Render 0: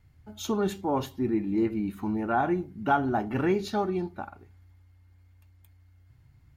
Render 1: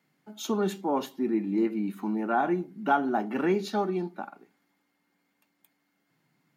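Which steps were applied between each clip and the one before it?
Butterworth high-pass 170 Hz 48 dB per octave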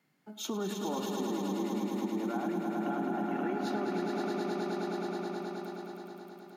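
brickwall limiter −22.5 dBFS, peak gain reduction 10.5 dB
echo that builds up and dies away 106 ms, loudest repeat 5, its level −5.5 dB
downward compressor 3 to 1, threshold −30 dBFS, peak gain reduction 7.5 dB
level −1.5 dB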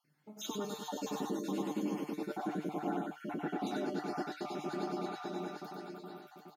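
time-frequency cells dropped at random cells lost 45%
tuned comb filter 150 Hz, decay 0.15 s, harmonics all, mix 80%
single-tap delay 95 ms −4 dB
level +5 dB

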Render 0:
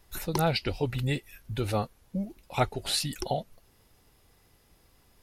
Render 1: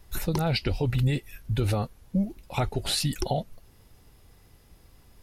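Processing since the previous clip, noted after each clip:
low-shelf EQ 210 Hz +7.5 dB
brickwall limiter −18.5 dBFS, peak gain reduction 9 dB
level +2.5 dB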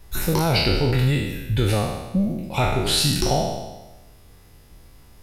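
peak hold with a decay on every bin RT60 1.12 s
level +3.5 dB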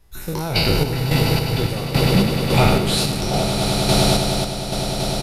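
echo that builds up and dies away 101 ms, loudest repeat 8, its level −9 dB
downsampling to 32,000 Hz
sample-and-hold tremolo 3.6 Hz, depth 75%
level +4 dB

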